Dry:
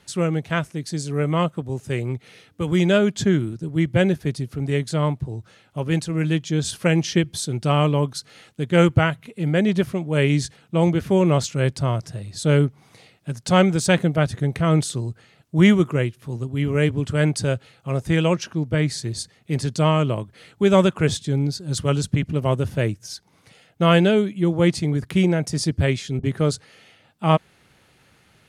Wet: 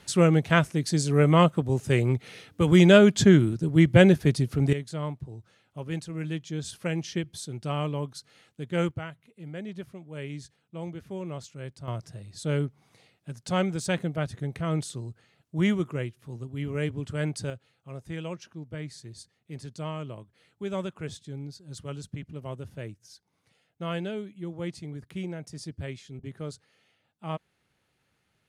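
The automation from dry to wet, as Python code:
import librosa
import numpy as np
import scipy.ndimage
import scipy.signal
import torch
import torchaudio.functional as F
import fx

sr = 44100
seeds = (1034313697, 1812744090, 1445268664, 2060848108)

y = fx.gain(x, sr, db=fx.steps((0.0, 2.0), (4.73, -11.0), (8.91, -18.5), (11.88, -10.0), (17.5, -16.5)))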